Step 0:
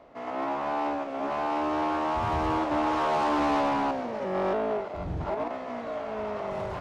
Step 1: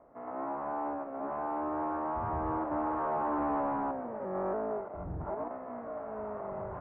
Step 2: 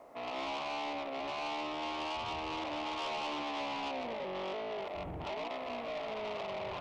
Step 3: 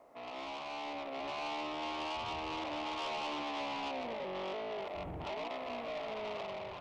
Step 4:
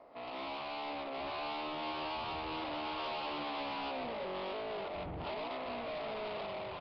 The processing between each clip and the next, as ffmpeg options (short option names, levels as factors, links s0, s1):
-af "lowpass=f=1500:w=0.5412,lowpass=f=1500:w=1.3066,volume=0.501"
-filter_complex "[0:a]alimiter=level_in=2.66:limit=0.0631:level=0:latency=1:release=51,volume=0.376,asplit=2[s0][s1];[s1]highpass=f=720:p=1,volume=5.01,asoftclip=type=tanh:threshold=0.0251[s2];[s0][s2]amix=inputs=2:normalize=0,lowpass=f=1300:p=1,volume=0.501,aexciter=amount=13.6:drive=2.7:freq=2300"
-af "dynaudnorm=f=640:g=3:m=1.68,volume=0.531"
-af "asoftclip=type=tanh:threshold=0.0112,aresample=11025,aresample=44100,volume=1.41" -ar 16000 -c:a aac -b:a 24k